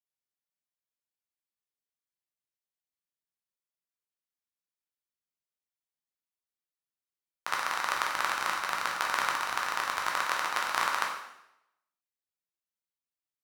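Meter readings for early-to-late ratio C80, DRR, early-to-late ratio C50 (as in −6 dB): 6.0 dB, −2.0 dB, 3.5 dB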